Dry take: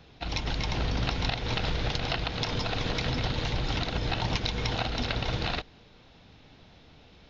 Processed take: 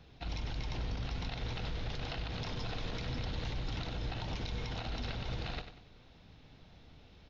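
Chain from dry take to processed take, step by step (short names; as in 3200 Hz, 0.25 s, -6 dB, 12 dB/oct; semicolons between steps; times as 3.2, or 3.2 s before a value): low shelf 140 Hz +6.5 dB; limiter -23.5 dBFS, peak gain reduction 11 dB; feedback echo 95 ms, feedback 36%, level -10 dB; gain -6.5 dB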